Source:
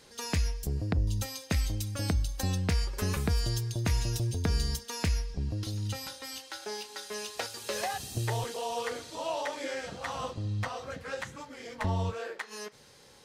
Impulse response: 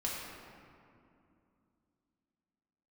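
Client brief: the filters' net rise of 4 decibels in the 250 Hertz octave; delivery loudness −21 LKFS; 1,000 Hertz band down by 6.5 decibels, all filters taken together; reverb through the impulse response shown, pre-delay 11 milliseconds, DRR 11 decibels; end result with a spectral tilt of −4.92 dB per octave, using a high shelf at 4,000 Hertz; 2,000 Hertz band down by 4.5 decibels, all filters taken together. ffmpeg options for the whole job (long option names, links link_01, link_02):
-filter_complex "[0:a]equalizer=frequency=250:width_type=o:gain=6,equalizer=frequency=1000:width_type=o:gain=-8.5,equalizer=frequency=2000:width_type=o:gain=-4,highshelf=frequency=4000:gain=4,asplit=2[link_01][link_02];[1:a]atrim=start_sample=2205,adelay=11[link_03];[link_02][link_03]afir=irnorm=-1:irlink=0,volume=-15dB[link_04];[link_01][link_04]amix=inputs=2:normalize=0,volume=11dB"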